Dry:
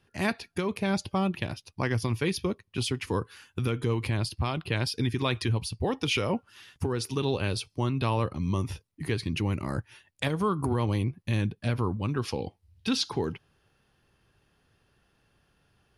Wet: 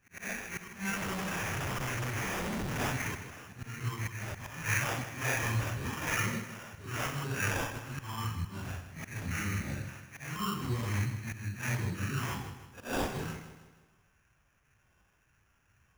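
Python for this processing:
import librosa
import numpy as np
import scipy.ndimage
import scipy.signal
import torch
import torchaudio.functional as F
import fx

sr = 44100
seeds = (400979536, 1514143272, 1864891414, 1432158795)

p1 = fx.phase_scramble(x, sr, seeds[0], window_ms=200)
p2 = fx.dynamic_eq(p1, sr, hz=2300.0, q=0.86, threshold_db=-46.0, ratio=4.0, max_db=5)
p3 = fx.phaser_stages(p2, sr, stages=4, low_hz=520.0, high_hz=1200.0, hz=0.95, feedback_pct=5)
p4 = fx.rider(p3, sr, range_db=4, speed_s=0.5)
p5 = p3 + (p4 * 10.0 ** (0.0 / 20.0))
p6 = fx.auto_swell(p5, sr, attack_ms=239.0)
p7 = fx.tone_stack(p6, sr, knobs='5-5-5')
p8 = fx.schmitt(p7, sr, flips_db=-55.5, at=(0.96, 2.8))
p9 = fx.sample_hold(p8, sr, seeds[1], rate_hz=4200.0, jitter_pct=0)
p10 = p9 + fx.echo_feedback(p9, sr, ms=157, feedback_pct=44, wet_db=-11.0, dry=0)
y = p10 * 10.0 ** (5.0 / 20.0)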